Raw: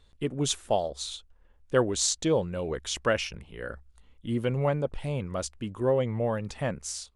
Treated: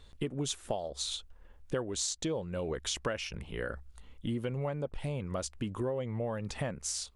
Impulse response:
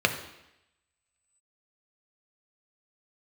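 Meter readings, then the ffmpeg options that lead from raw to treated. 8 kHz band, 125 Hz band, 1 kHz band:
-5.0 dB, -5.5 dB, -8.5 dB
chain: -af "acompressor=threshold=0.0141:ratio=6,volume=1.78"

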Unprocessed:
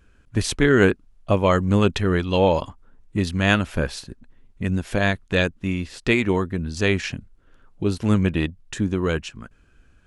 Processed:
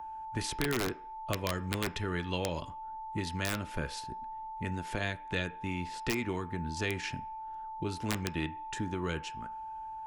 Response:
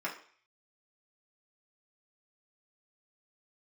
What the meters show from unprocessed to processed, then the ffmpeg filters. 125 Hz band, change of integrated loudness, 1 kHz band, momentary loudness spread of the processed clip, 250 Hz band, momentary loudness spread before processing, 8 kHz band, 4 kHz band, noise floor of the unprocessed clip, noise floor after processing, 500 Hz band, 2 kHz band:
-14.0 dB, -14.0 dB, -7.0 dB, 8 LU, -15.0 dB, 10 LU, -7.0 dB, -9.5 dB, -56 dBFS, -45 dBFS, -16.0 dB, -12.5 dB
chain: -filter_complex "[0:a]aeval=exprs='val(0)+0.0251*sin(2*PI*880*n/s)':c=same,aeval=exprs='(mod(2.24*val(0)+1,2)-1)/2.24':c=same,acrossover=split=310|770|2000[s0][s1][s2][s3];[s0]acompressor=threshold=0.0562:ratio=4[s4];[s1]acompressor=threshold=0.0178:ratio=4[s5];[s2]acompressor=threshold=0.0158:ratio=4[s6];[s3]acompressor=threshold=0.0447:ratio=4[s7];[s4][s5][s6][s7]amix=inputs=4:normalize=0,asplit=2[s8][s9];[1:a]atrim=start_sample=2205,lowpass=4500[s10];[s9][s10]afir=irnorm=-1:irlink=0,volume=0.251[s11];[s8][s11]amix=inputs=2:normalize=0,volume=0.398"

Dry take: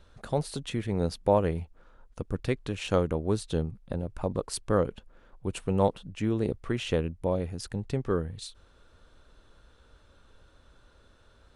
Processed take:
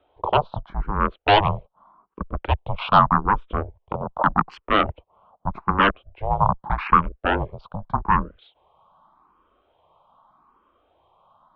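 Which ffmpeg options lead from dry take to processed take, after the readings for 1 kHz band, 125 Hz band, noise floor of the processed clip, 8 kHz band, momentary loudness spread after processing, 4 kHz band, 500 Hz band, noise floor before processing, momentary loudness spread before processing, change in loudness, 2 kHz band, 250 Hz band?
+17.5 dB, +3.0 dB, -69 dBFS, under -25 dB, 15 LU, +10.0 dB, +1.0 dB, -60 dBFS, 10 LU, +8.0 dB, +16.0 dB, +1.5 dB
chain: -filter_complex "[0:a]afwtdn=0.01,equalizer=f=690:t=o:w=2.2:g=11,aeval=exprs='0.841*sin(PI/2*5.62*val(0)/0.841)':c=same,highpass=f=340:t=q:w=0.5412,highpass=f=340:t=q:w=1.307,lowpass=f=3600:t=q:w=0.5176,lowpass=f=3600:t=q:w=0.7071,lowpass=f=3600:t=q:w=1.932,afreqshift=-300,equalizer=f=125:t=o:w=1:g=-9,equalizer=f=250:t=o:w=1:g=-12,equalizer=f=1000:t=o:w=1:g=10,equalizer=f=2000:t=o:w=1:g=-9,asplit=2[s0][s1];[s1]afreqshift=0.83[s2];[s0][s2]amix=inputs=2:normalize=1,volume=0.668"

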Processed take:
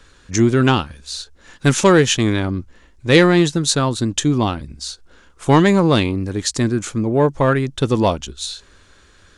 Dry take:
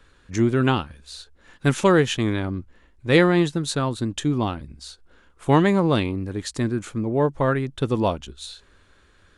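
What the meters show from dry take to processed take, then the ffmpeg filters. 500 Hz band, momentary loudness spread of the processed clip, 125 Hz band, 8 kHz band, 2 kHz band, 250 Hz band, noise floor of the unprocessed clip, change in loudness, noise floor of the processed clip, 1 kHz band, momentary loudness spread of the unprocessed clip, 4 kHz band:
+5.0 dB, 16 LU, +5.0 dB, +12.5 dB, +5.5 dB, +5.0 dB, -57 dBFS, +5.5 dB, -51 dBFS, +5.0 dB, 19 LU, +8.5 dB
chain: -af "acontrast=45,equalizer=f=6100:t=o:w=1.1:g=8"

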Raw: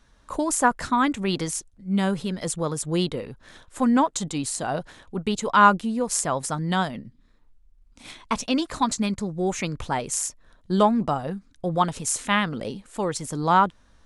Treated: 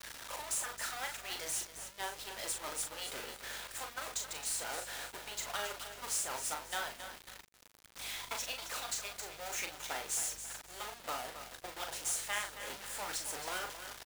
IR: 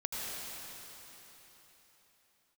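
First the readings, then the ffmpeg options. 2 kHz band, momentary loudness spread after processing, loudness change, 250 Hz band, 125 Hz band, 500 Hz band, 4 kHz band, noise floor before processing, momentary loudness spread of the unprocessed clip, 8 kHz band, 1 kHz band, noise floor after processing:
-11.0 dB, 9 LU, -14.0 dB, -33.5 dB, -29.5 dB, -19.0 dB, -7.0 dB, -58 dBFS, 11 LU, -7.0 dB, -19.5 dB, -57 dBFS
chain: -filter_complex "[0:a]aeval=exprs='val(0)+0.5*0.1*sgn(val(0))':c=same,afftfilt=real='re*lt(hypot(re,im),0.631)':imag='im*lt(hypot(re,im),0.631)':win_size=1024:overlap=0.75,agate=range=0.0224:threshold=0.158:ratio=3:detection=peak,highpass=660,bandreject=f=1100:w=8.8,acompressor=threshold=0.0112:ratio=3,acrusher=bits=2:mode=log:mix=0:aa=0.000001,asplit=2[s0][s1];[s1]aecho=0:1:270|540|810|1080:0.299|0.104|0.0366|0.0128[s2];[s0][s2]amix=inputs=2:normalize=0,aeval=exprs='val(0)+0.000631*(sin(2*PI*50*n/s)+sin(2*PI*2*50*n/s)/2+sin(2*PI*3*50*n/s)/3+sin(2*PI*4*50*n/s)/4+sin(2*PI*5*50*n/s)/5)':c=same,asplit=2[s3][s4];[s4]adelay=39,volume=0.501[s5];[s3][s5]amix=inputs=2:normalize=0,acrusher=bits=7:mix=0:aa=0.5"

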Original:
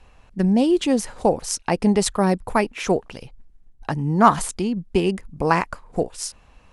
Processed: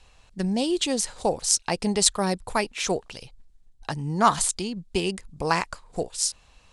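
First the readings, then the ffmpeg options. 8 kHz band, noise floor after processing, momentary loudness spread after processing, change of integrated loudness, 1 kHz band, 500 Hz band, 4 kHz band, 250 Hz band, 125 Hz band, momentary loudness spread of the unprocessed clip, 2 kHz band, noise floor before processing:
+5.5 dB, -57 dBFS, 12 LU, -4.0 dB, -4.5 dB, -6.0 dB, +4.5 dB, -8.0 dB, -7.0 dB, 12 LU, -2.5 dB, -53 dBFS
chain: -af "equalizer=f=250:t=o:w=1:g=-4,equalizer=f=4000:t=o:w=1:g=9,equalizer=f=8000:t=o:w=1:g=10,volume=0.562"

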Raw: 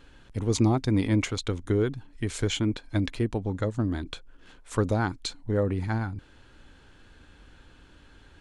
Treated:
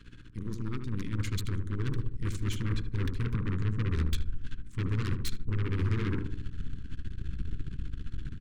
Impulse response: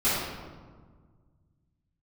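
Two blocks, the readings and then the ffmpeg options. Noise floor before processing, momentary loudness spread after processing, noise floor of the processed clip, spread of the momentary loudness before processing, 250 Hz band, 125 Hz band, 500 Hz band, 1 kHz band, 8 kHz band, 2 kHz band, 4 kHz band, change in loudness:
-55 dBFS, 11 LU, -45 dBFS, 11 LU, -8.5 dB, -1.5 dB, -13.5 dB, -11.0 dB, -9.5 dB, -5.5 dB, -8.0 dB, -6.0 dB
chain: -filter_complex "[0:a]deesser=0.7,highshelf=f=9400:g=-5.5,tremolo=f=15:d=0.67,areverse,acompressor=threshold=0.0158:ratio=8,areverse,asubboost=boost=9:cutoff=170,aeval=exprs='val(0)+0.002*(sin(2*PI*60*n/s)+sin(2*PI*2*60*n/s)/2+sin(2*PI*3*60*n/s)/3+sin(2*PI*4*60*n/s)/4+sin(2*PI*5*60*n/s)/5)':c=same,aeval=exprs='0.0596*(abs(mod(val(0)/0.0596+3,4)-2)-1)':c=same,aeval=exprs='0.0631*(cos(1*acos(clip(val(0)/0.0631,-1,1)))-cos(1*PI/2))+0.0141*(cos(8*acos(clip(val(0)/0.0631,-1,1)))-cos(8*PI/2))':c=same,asuperstop=centerf=690:order=4:qfactor=0.92,asplit=2[s0][s1];[s1]adelay=76,lowpass=f=960:p=1,volume=0.531,asplit=2[s2][s3];[s3]adelay=76,lowpass=f=960:p=1,volume=0.49,asplit=2[s4][s5];[s5]adelay=76,lowpass=f=960:p=1,volume=0.49,asplit=2[s6][s7];[s7]adelay=76,lowpass=f=960:p=1,volume=0.49,asplit=2[s8][s9];[s9]adelay=76,lowpass=f=960:p=1,volume=0.49,asplit=2[s10][s11];[s11]adelay=76,lowpass=f=960:p=1,volume=0.49[s12];[s2][s4][s6][s8][s10][s12]amix=inputs=6:normalize=0[s13];[s0][s13]amix=inputs=2:normalize=0"

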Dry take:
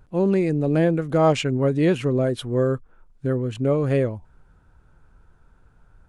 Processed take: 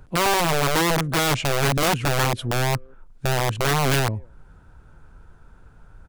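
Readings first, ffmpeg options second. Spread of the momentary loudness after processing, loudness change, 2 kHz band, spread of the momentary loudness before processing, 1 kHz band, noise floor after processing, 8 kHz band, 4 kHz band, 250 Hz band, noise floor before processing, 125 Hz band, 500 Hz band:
6 LU, 0.0 dB, +10.5 dB, 7 LU, +8.0 dB, -51 dBFS, +16.0 dB, +11.0 dB, -6.0 dB, -58 dBFS, -0.5 dB, -4.0 dB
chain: -filter_complex "[0:a]asplit=2[s0][s1];[s1]adelay=190,highpass=300,lowpass=3400,asoftclip=type=hard:threshold=0.168,volume=0.0316[s2];[s0][s2]amix=inputs=2:normalize=0,acrossover=split=190[s3][s4];[s4]acompressor=threshold=0.00631:ratio=1.5[s5];[s3][s5]amix=inputs=2:normalize=0,aeval=exprs='(mod(11.9*val(0)+1,2)-1)/11.9':c=same,volume=2.11"

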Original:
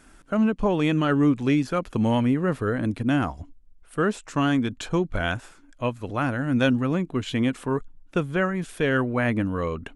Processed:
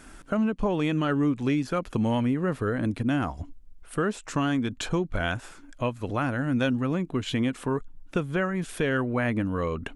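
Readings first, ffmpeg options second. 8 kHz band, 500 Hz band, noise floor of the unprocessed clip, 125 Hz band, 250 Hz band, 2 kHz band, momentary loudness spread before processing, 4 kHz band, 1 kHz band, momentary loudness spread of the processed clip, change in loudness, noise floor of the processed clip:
+1.0 dB, -3.0 dB, -52 dBFS, -2.5 dB, -3.0 dB, -3.0 dB, 8 LU, -2.0 dB, -3.0 dB, 6 LU, -3.0 dB, -48 dBFS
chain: -af "acompressor=threshold=0.02:ratio=2,volume=1.78"

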